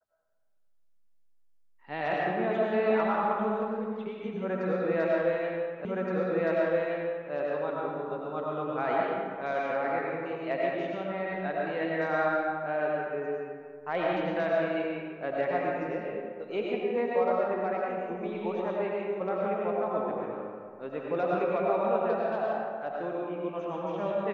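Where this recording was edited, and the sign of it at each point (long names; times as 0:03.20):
0:05.85: the same again, the last 1.47 s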